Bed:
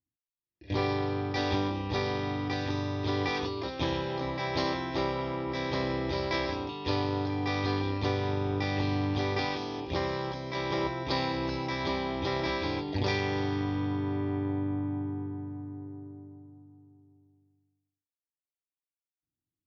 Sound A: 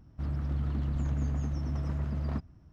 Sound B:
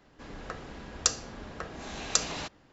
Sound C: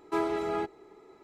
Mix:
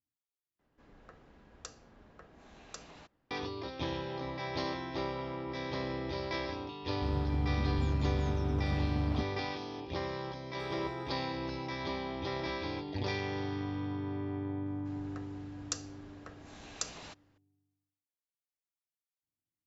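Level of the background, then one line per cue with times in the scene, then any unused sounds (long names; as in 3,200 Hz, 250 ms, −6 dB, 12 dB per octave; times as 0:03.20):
bed −6 dB
0:00.59: overwrite with B −15 dB + high-shelf EQ 3,500 Hz −10 dB
0:06.83: mix in A −1.5 dB
0:10.47: mix in C −17.5 dB
0:14.66: mix in B −11.5 dB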